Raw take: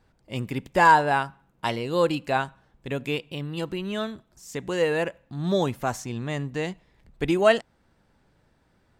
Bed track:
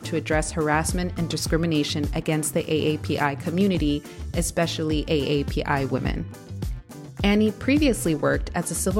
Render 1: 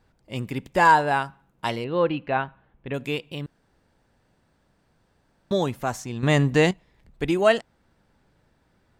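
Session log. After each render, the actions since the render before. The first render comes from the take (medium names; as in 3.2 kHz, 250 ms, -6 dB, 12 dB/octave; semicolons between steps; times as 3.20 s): 1.84–2.94 s: low-pass 3 kHz 24 dB/octave; 3.46–5.51 s: room tone; 6.23–6.71 s: gain +10.5 dB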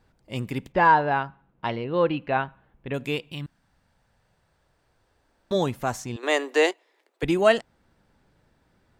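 0.72–1.94 s: distance through air 260 m; 3.30–5.54 s: peaking EQ 500 Hz -> 140 Hz -13 dB; 6.16–7.23 s: steep high-pass 330 Hz 48 dB/octave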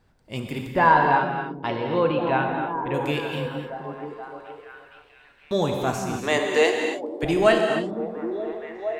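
repeats whose band climbs or falls 468 ms, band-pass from 230 Hz, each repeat 0.7 oct, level -3.5 dB; gated-style reverb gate 310 ms flat, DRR 2 dB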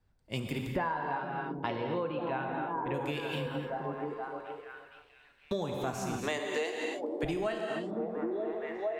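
compression 16:1, threshold -30 dBFS, peak gain reduction 19 dB; three bands expanded up and down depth 40%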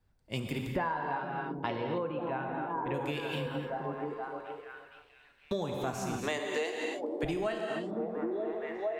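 1.98–2.70 s: distance through air 250 m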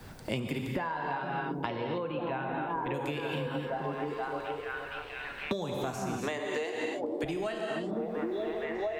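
three bands compressed up and down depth 100%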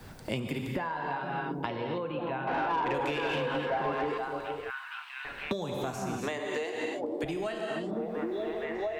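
2.47–4.18 s: overdrive pedal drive 16 dB, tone 2.5 kHz, clips at -21 dBFS; 4.70–5.25 s: steep high-pass 930 Hz 48 dB/octave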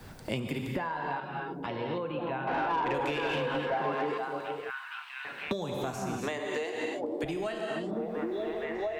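1.20–1.68 s: three-phase chorus; 3.74–5.48 s: high-pass 120 Hz 24 dB/octave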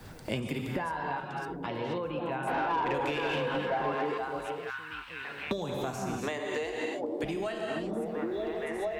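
add bed track -29 dB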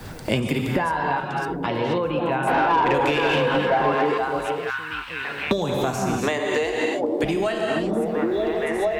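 trim +10.5 dB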